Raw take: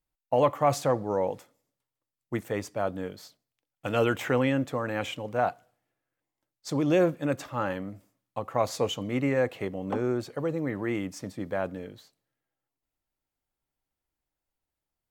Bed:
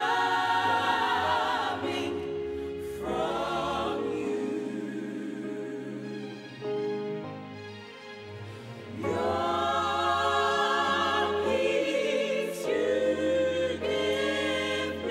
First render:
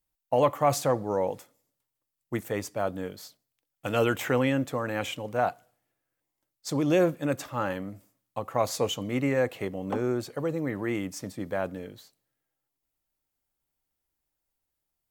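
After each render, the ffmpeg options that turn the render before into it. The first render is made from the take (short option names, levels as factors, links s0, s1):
-af "highshelf=f=7300:g=8.5"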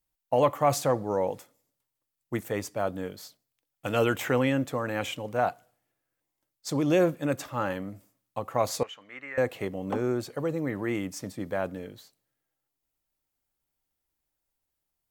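-filter_complex "[0:a]asettb=1/sr,asplit=3[s0][s1][s2];[s0]atrim=end=8.834[s3];[s1]atrim=start=8.83:end=9.38,asetpts=PTS-STARTPTS,afade=t=in:d=0.004:c=qsin,afade=t=out:st=0.546:d=0.004:c=qsin,bandpass=f=1700:t=q:w=2.5[s4];[s2]atrim=start=9.376[s5];[s3][s4]acrossfade=d=0.004:c1=hsin:c2=qsin[s6];[s6][s5]acrossfade=d=0.004:c1=qsin:c2=hsin"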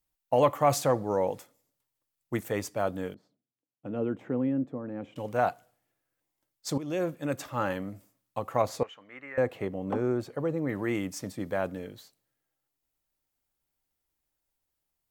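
-filter_complex "[0:a]asettb=1/sr,asplit=3[s0][s1][s2];[s0]atrim=end=3.144[s3];[s1]atrim=start=3.14:end=5.16,asetpts=PTS-STARTPTS,afade=t=in:d=0.004:c=qsin,afade=t=out:st=2.016:d=0.004:c=qsin,bandpass=f=240:t=q:w=1.4[s4];[s2]atrim=start=5.156[s5];[s3][s4]acrossfade=d=0.004:c1=hsin:c2=qsin[s6];[s6][s5]acrossfade=d=0.004:c1=qsin:c2=hsin,asettb=1/sr,asplit=3[s7][s8][s9];[s7]atrim=end=8.624[s10];[s8]atrim=start=8.62:end=10.69,asetpts=PTS-STARTPTS,afade=t=in:d=0.004:c=qsin,afade=t=out:st=2.066:d=0.004:c=qsin,highshelf=f=2600:g=-10[s11];[s9]atrim=start=10.686[s12];[s10][s11]acrossfade=d=0.004:c1=hsin:c2=qsin[s13];[s13][s12]acrossfade=d=0.004:c1=qsin:c2=hsin,asplit=2[s14][s15];[s14]atrim=end=6.78,asetpts=PTS-STARTPTS,afade=t=out:st=6.776:d=0.004:c=hsin:silence=0.211349[s16];[s15]atrim=start=6.78,asetpts=PTS-STARTPTS,afade=t=in:d=0.83:silence=0.211349[s17];[s16][s17]concat=n=2:v=0:a=1"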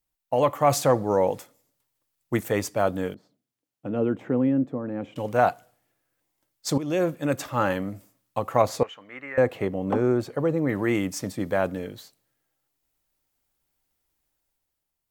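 -af "dynaudnorm=f=120:g=11:m=2"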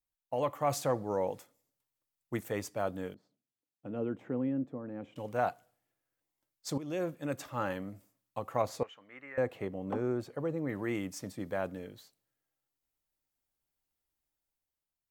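-af "volume=0.299"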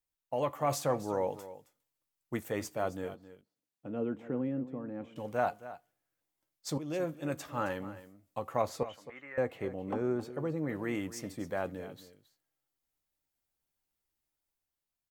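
-filter_complex "[0:a]asplit=2[s0][s1];[s1]adelay=13,volume=0.266[s2];[s0][s2]amix=inputs=2:normalize=0,aecho=1:1:268:0.178"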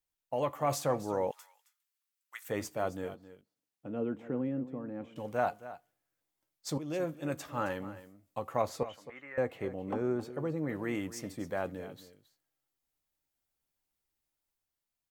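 -filter_complex "[0:a]asettb=1/sr,asplit=3[s0][s1][s2];[s0]atrim=end=1.314[s3];[s1]atrim=start=1.31:end=2.49,asetpts=PTS-STARTPTS,afade=t=in:d=0.004:c=qsin,afade=t=out:st=1.176:d=0.004:c=qsin,highpass=f=1200:w=0.5412,highpass=f=1200:w=1.3066[s4];[s2]atrim=start=2.486[s5];[s3][s4]acrossfade=d=0.004:c1=hsin:c2=qsin[s6];[s6][s5]acrossfade=d=0.004:c1=qsin:c2=hsin"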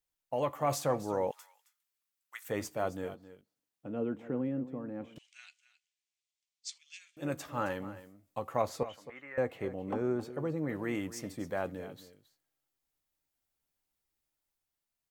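-filter_complex "[0:a]asettb=1/sr,asplit=3[s0][s1][s2];[s0]atrim=end=5.184[s3];[s1]atrim=start=5.18:end=7.17,asetpts=PTS-STARTPTS,afade=t=in:d=0.004:c=qsin,afade=t=out:st=1.986:d=0.004:c=qsin,asuperpass=centerf=4400:order=8:qfactor=0.75[s4];[s2]atrim=start=7.166[s5];[s3][s4]acrossfade=d=0.004:c1=hsin:c2=qsin[s6];[s6][s5]acrossfade=d=0.004:c1=qsin:c2=hsin"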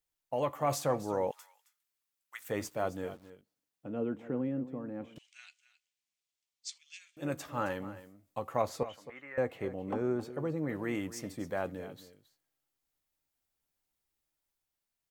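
-filter_complex "[0:a]asettb=1/sr,asplit=3[s0][s1][s2];[s0]atrim=end=2.384[s3];[s1]atrim=start=2.38:end=3.3,asetpts=PTS-STARTPTS,afade=t=in:d=0.004:c=qsin,afade=t=out:st=0.916:d=0.004:c=qsin,aeval=exprs='val(0)*gte(abs(val(0)),0.00133)':c=same[s4];[s2]atrim=start=3.296[s5];[s3][s4]acrossfade=d=0.004:c1=hsin:c2=qsin[s6];[s6][s5]acrossfade=d=0.004:c1=qsin:c2=hsin"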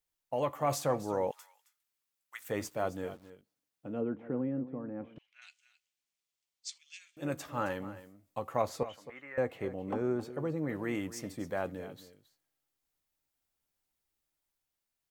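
-filter_complex "[0:a]asettb=1/sr,asplit=3[s0][s1][s2];[s0]atrim=end=4.014[s3];[s1]atrim=start=4.01:end=5.42,asetpts=PTS-STARTPTS,afade=t=in:d=0.004:c=qsin,afade=t=out:st=1.406:d=0.004:c=qsin,lowpass=2000[s4];[s2]atrim=start=5.416[s5];[s3][s4]acrossfade=d=0.004:c1=hsin:c2=qsin[s6];[s6][s5]acrossfade=d=0.004:c1=qsin:c2=hsin"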